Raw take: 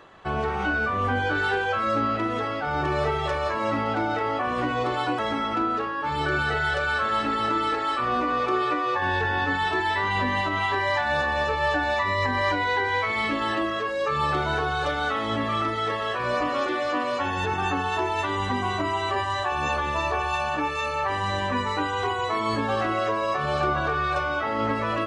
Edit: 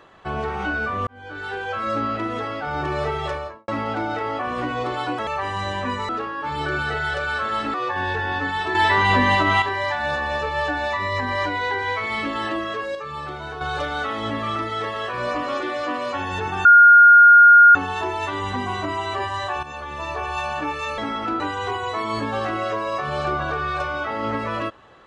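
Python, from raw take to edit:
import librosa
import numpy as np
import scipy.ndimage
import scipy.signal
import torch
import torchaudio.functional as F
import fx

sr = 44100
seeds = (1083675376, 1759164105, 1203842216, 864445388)

y = fx.studio_fade_out(x, sr, start_s=3.27, length_s=0.41)
y = fx.edit(y, sr, fx.fade_in_span(start_s=1.07, length_s=0.84),
    fx.swap(start_s=5.27, length_s=0.42, other_s=20.94, other_length_s=0.82),
    fx.cut(start_s=7.34, length_s=1.46),
    fx.clip_gain(start_s=9.81, length_s=0.87, db=7.5),
    fx.clip_gain(start_s=14.01, length_s=0.66, db=-7.5),
    fx.insert_tone(at_s=17.71, length_s=1.1, hz=1420.0, db=-6.0),
    fx.fade_in_from(start_s=19.59, length_s=0.77, floor_db=-12.0), tone=tone)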